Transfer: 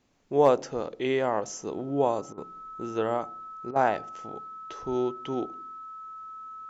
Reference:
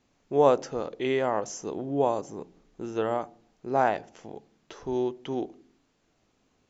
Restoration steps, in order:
clipped peaks rebuilt −9 dBFS
notch filter 1,300 Hz, Q 30
repair the gap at 0:02.33/0:03.71, 46 ms

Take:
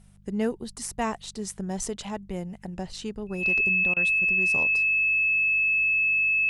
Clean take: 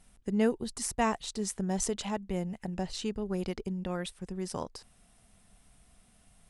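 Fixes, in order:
clipped peaks rebuilt −16 dBFS
hum removal 49.3 Hz, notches 4
notch filter 2,600 Hz, Q 30
repair the gap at 0:03.94, 24 ms

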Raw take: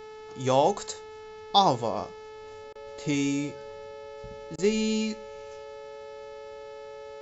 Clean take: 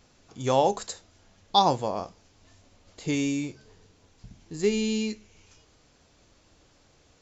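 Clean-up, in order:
hum removal 433 Hz, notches 13
notch filter 560 Hz, Q 30
repair the gap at 0:02.73/0:04.56, 22 ms

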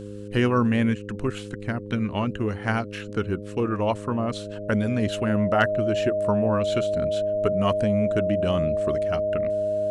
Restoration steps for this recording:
clipped peaks rebuilt −7.5 dBFS
hum removal 102.7 Hz, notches 5
notch filter 620 Hz, Q 30

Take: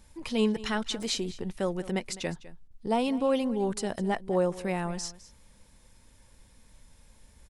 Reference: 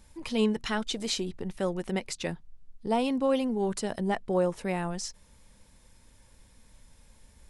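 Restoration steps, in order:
repair the gap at 0:01.03, 1.3 ms
repair the gap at 0:02.68, 26 ms
echo removal 205 ms −17.5 dB

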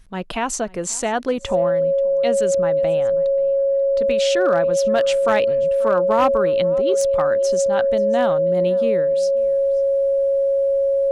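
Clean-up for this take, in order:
clipped peaks rebuilt −9.5 dBFS
notch filter 550 Hz, Q 30
echo removal 535 ms −23 dB

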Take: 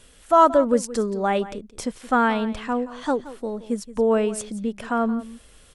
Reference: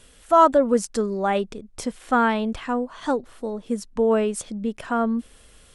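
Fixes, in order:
echo removal 174 ms −16 dB

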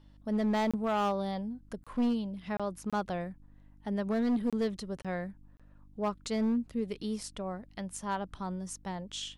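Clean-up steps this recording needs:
clipped peaks rebuilt −24.5 dBFS
hum removal 49.7 Hz, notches 6
repair the gap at 0:00.71/0:01.84/0:02.57/0:02.90/0:04.50/0:05.02/0:05.57, 26 ms

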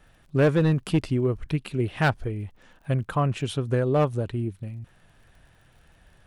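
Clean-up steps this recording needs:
clipped peaks rebuilt −14.5 dBFS
click removal

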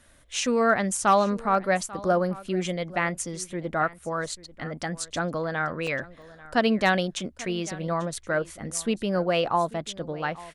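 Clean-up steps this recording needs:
clipped peaks rebuilt −11 dBFS
repair the gap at 0:05.87/0:06.22, 2.5 ms
echo removal 841 ms −19.5 dB

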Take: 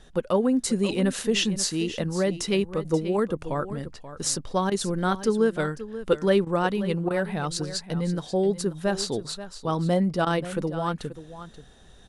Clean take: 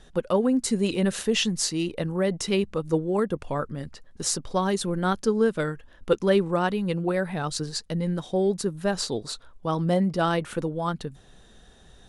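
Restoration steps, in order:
repair the gap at 0:04.70/0:06.45/0:07.09/0:10.25, 14 ms
echo removal 533 ms −13.5 dB

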